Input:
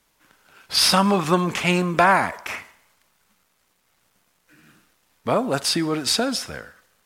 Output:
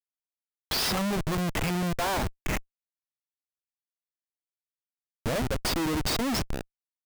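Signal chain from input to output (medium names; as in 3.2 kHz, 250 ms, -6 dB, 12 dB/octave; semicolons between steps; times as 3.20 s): expander on every frequency bin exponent 1.5; recorder AGC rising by 28 dB/s; Schmitt trigger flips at -22.5 dBFS; trim -2.5 dB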